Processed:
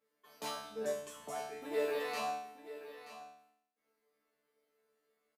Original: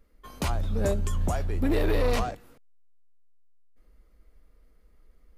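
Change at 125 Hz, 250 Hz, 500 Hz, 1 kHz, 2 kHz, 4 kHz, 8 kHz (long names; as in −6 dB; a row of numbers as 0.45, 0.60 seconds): −34.0, −18.0, −7.5, −5.5, −7.0, −6.0, −7.5 decibels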